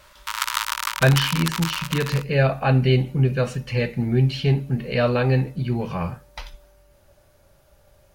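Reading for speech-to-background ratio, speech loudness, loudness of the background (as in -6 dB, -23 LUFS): 5.0 dB, -22.0 LUFS, -27.0 LUFS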